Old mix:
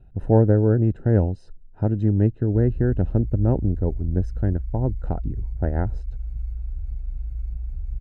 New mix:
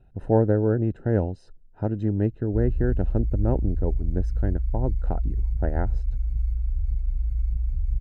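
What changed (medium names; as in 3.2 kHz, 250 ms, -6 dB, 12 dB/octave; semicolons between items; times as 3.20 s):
speech: add bass shelf 240 Hz -7 dB; background +4.5 dB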